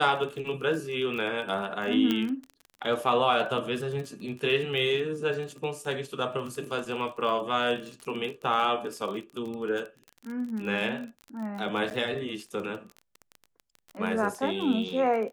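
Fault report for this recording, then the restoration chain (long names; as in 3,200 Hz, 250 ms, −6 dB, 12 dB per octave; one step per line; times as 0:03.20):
surface crackle 27 per second −34 dBFS
0:02.11: click −14 dBFS
0:11.90–0:11.91: drop-out 9.1 ms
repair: click removal
repair the gap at 0:11.90, 9.1 ms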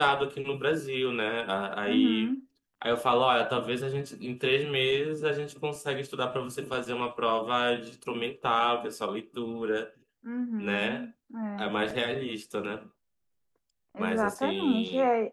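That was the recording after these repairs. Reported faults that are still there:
none of them is left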